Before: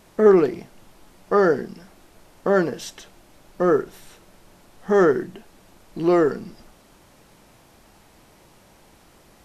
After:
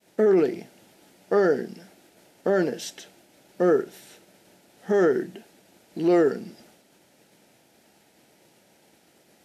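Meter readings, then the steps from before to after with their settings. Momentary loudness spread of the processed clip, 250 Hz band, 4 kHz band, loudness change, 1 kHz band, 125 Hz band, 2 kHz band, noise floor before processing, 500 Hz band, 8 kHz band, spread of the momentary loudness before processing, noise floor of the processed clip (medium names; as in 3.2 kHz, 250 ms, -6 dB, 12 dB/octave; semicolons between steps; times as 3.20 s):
18 LU, -2.5 dB, -1.0 dB, -3.5 dB, -6.5 dB, -5.0 dB, -4.0 dB, -54 dBFS, -3.0 dB, no reading, 21 LU, -61 dBFS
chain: expander -48 dBFS; high-pass 180 Hz 12 dB/octave; peaking EQ 1.1 kHz -14.5 dB 0.36 oct; peak limiter -12 dBFS, peak gain reduction 7.5 dB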